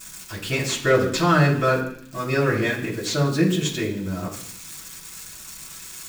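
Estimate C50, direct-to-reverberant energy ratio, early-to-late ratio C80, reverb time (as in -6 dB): 7.5 dB, -7.0 dB, 10.5 dB, 0.65 s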